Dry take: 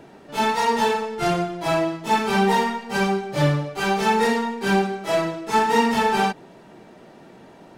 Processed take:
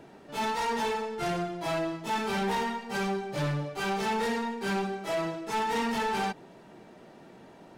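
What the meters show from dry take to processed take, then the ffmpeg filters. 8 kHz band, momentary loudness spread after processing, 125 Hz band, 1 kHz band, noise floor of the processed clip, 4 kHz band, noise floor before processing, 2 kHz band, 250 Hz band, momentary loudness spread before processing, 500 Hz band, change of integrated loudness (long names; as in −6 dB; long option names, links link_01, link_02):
−8.0 dB, 3 LU, −9.5 dB, −9.5 dB, −52 dBFS, −8.0 dB, −47 dBFS, −9.0 dB, −9.0 dB, 5 LU, −9.0 dB, −9.0 dB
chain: -af "asoftclip=type=tanh:threshold=-20.5dB,volume=-5dB"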